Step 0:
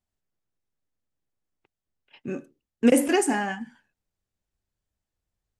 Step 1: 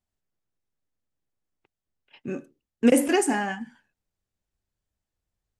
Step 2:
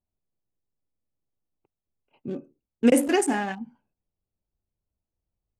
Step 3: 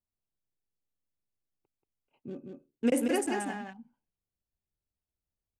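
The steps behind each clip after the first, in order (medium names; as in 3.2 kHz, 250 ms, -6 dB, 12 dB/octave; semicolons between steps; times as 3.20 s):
no audible change
local Wiener filter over 25 samples
delay 182 ms -4.5 dB; trim -8.5 dB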